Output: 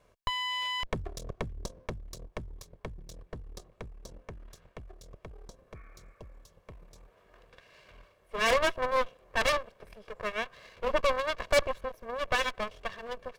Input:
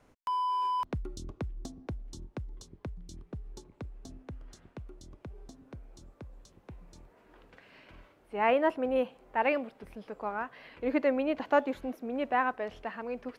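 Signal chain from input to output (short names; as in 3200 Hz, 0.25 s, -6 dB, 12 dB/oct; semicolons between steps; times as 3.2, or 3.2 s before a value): minimum comb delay 1.8 ms; added harmonics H 8 -9 dB, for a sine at -15 dBFS; spectral repair 5.78–6.58, 1100–2600 Hz both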